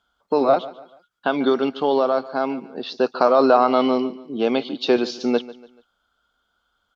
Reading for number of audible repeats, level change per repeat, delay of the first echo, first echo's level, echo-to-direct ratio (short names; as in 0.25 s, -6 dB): 3, -8.5 dB, 0.144 s, -18.0 dB, -17.5 dB